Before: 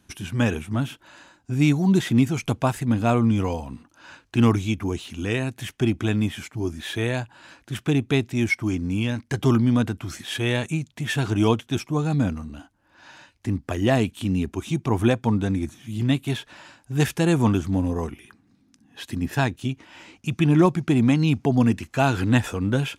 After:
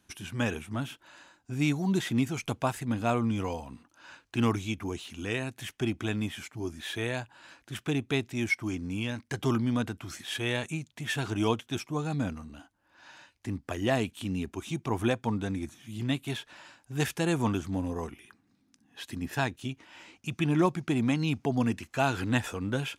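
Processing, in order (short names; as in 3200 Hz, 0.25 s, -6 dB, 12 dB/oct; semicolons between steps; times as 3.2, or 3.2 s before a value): low shelf 350 Hz -6 dB; gain -4.5 dB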